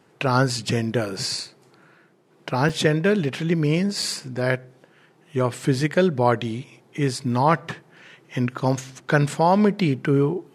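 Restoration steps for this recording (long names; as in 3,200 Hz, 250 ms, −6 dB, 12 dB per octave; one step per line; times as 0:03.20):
repair the gap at 0:02.69/0:04.02, 4.9 ms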